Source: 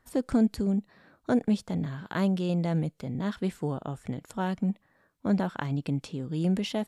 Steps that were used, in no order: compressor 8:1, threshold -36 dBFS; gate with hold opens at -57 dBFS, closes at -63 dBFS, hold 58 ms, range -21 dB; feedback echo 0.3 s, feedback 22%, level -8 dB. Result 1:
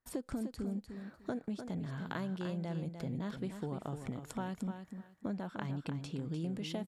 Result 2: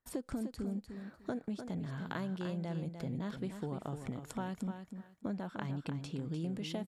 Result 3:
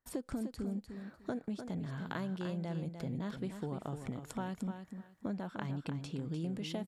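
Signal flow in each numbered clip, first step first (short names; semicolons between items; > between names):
gate with hold > compressor > feedback echo; compressor > gate with hold > feedback echo; compressor > feedback echo > gate with hold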